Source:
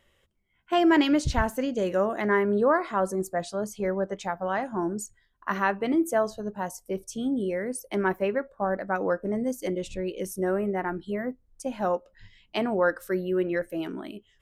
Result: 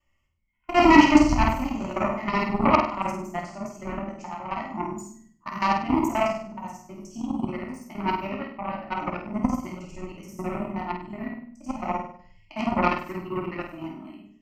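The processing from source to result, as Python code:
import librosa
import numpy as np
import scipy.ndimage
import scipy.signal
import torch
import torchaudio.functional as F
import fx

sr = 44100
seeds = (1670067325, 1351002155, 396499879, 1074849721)

p1 = fx.local_reverse(x, sr, ms=53.0)
p2 = fx.notch(p1, sr, hz=3900.0, q=7.6)
p3 = fx.room_shoebox(p2, sr, seeds[0], volume_m3=370.0, walls='furnished', distance_m=2.6)
p4 = fx.hpss(p3, sr, part='percussive', gain_db=-5)
p5 = fx.cheby_harmonics(p4, sr, harmonics=(7,), levels_db=(-19,), full_scale_db=-3.0)
p6 = fx.fixed_phaser(p5, sr, hz=2400.0, stages=8)
p7 = p6 + fx.room_flutter(p6, sr, wall_m=8.5, rt60_s=0.49, dry=0)
y = p7 * librosa.db_to_amplitude(6.0)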